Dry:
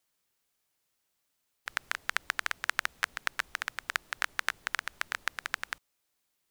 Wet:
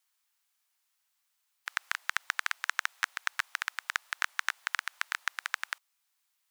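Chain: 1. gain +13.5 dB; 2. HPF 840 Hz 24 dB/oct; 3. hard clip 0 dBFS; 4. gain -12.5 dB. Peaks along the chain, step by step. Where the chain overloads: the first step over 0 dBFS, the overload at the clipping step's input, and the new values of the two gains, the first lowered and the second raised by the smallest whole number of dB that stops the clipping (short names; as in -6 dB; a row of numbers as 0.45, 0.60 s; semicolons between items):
+8.5, +5.5, 0.0, -12.5 dBFS; step 1, 5.5 dB; step 1 +7.5 dB, step 4 -6.5 dB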